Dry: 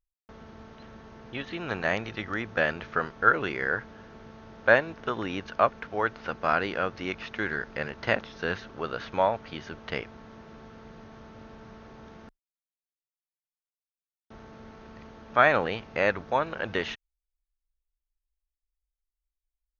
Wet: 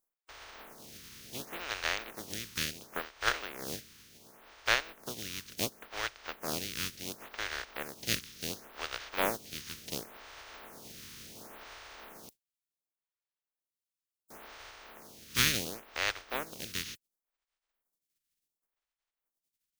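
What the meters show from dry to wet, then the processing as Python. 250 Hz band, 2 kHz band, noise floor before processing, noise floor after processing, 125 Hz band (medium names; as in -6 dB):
-9.5 dB, -8.5 dB, under -85 dBFS, under -85 dBFS, -7.5 dB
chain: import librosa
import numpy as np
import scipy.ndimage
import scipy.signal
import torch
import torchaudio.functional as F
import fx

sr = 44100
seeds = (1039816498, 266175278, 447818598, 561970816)

y = fx.spec_flatten(x, sr, power=0.23)
y = fx.rider(y, sr, range_db=10, speed_s=2.0)
y = fx.dynamic_eq(y, sr, hz=930.0, q=1.5, threshold_db=-38.0, ratio=4.0, max_db=-5)
y = fx.stagger_phaser(y, sr, hz=0.7)
y = y * 10.0 ** (-6.0 / 20.0)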